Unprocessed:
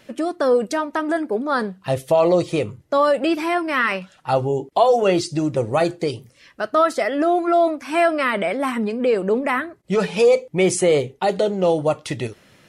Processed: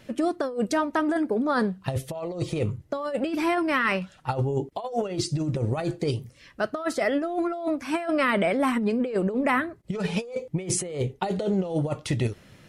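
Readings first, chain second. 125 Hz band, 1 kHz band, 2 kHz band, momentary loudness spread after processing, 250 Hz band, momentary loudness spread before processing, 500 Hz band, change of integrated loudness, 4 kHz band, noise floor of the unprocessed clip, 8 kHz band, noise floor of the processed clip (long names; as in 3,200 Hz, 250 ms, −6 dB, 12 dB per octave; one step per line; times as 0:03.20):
+0.5 dB, −8.0 dB, −4.5 dB, 8 LU, −3.0 dB, 8 LU, −10.0 dB, −7.0 dB, −6.0 dB, −54 dBFS, −3.0 dB, −54 dBFS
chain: low-shelf EQ 170 Hz +11.5 dB
compressor whose output falls as the input rises −19 dBFS, ratio −0.5
level −5.5 dB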